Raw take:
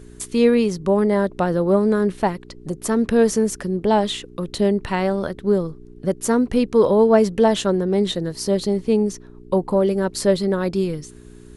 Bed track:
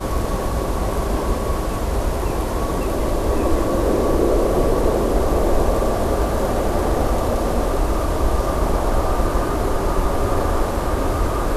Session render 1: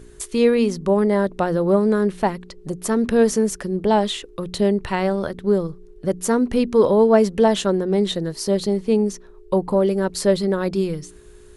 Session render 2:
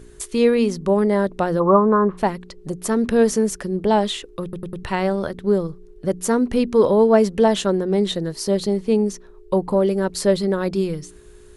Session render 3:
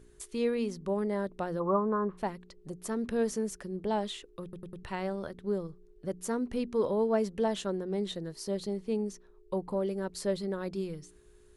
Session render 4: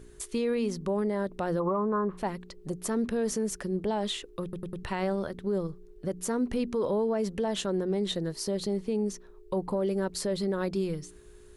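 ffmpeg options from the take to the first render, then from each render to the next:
-af "bandreject=f=60:t=h:w=4,bandreject=f=120:t=h:w=4,bandreject=f=180:t=h:w=4,bandreject=f=240:t=h:w=4,bandreject=f=300:t=h:w=4"
-filter_complex "[0:a]asplit=3[a][b][c];[a]afade=t=out:st=1.59:d=0.02[d];[b]lowpass=f=1.1k:t=q:w=7.8,afade=t=in:st=1.59:d=0.02,afade=t=out:st=2.17:d=0.02[e];[c]afade=t=in:st=2.17:d=0.02[f];[d][e][f]amix=inputs=3:normalize=0,asplit=5[g][h][i][j][k];[g]atrim=end=4.532[l];[h]atrim=start=4.428:end=4.532[m];[i]atrim=start=4.428:end=4.532[n];[j]atrim=start=4.428:end=4.532[o];[k]atrim=start=4.828[p];[l][m]acrossfade=d=0.004:c1=hsin:c2=hsin[q];[q][n]acrossfade=d=0.004:c1=hsin:c2=hsin[r];[r][o]acrossfade=d=0.004:c1=hsin:c2=hsin[s];[s][p]acrossfade=d=0.004:c1=hsin:c2=hsin"
-af "volume=-13.5dB"
-af "acontrast=75,alimiter=limit=-21dB:level=0:latency=1:release=79"

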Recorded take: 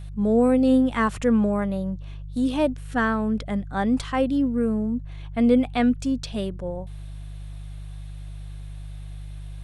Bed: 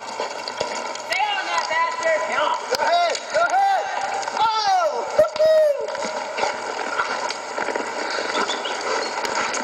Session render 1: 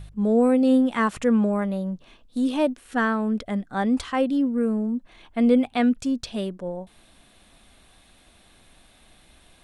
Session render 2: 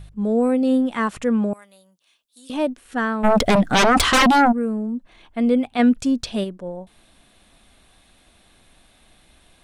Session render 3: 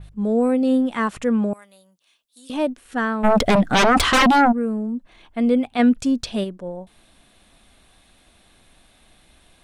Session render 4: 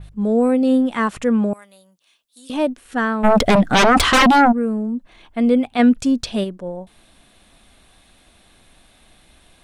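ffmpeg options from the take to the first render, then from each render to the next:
-af "bandreject=f=50:t=h:w=4,bandreject=f=100:t=h:w=4,bandreject=f=150:t=h:w=4"
-filter_complex "[0:a]asettb=1/sr,asplit=3[a][b][c];[a]atrim=end=1.534[d];[b]atrim=start=1.53:end=2.5,asetpts=PTS-STARTPTS,afade=t=in:d=0.004:c=qsin,afade=t=out:st=0.966:d=0.004:c=qsin,aderivative[e];[c]atrim=start=2.496[f];[d][e]acrossfade=d=0.004:c1=hsin:c2=qsin[g];[g][f]acrossfade=d=0.004:c1=qsin:c2=hsin,asplit=3[h][i][j];[h]afade=t=out:st=3.23:d=0.02[k];[i]aeval=exprs='0.282*sin(PI/2*6.31*val(0)/0.282)':c=same,afade=t=in:st=3.23:d=0.02,afade=t=out:st=4.51:d=0.02[l];[j]afade=t=in:st=4.51:d=0.02[m];[k][l][m]amix=inputs=3:normalize=0,asplit=3[n][o][p];[n]afade=t=out:st=5.78:d=0.02[q];[o]acontrast=24,afade=t=in:st=5.78:d=0.02,afade=t=out:st=6.43:d=0.02[r];[p]afade=t=in:st=6.43:d=0.02[s];[q][r][s]amix=inputs=3:normalize=0"
-af "adynamicequalizer=threshold=0.0178:dfrequency=4200:dqfactor=0.7:tfrequency=4200:tqfactor=0.7:attack=5:release=100:ratio=0.375:range=2:mode=cutabove:tftype=highshelf"
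-af "volume=2.5dB"

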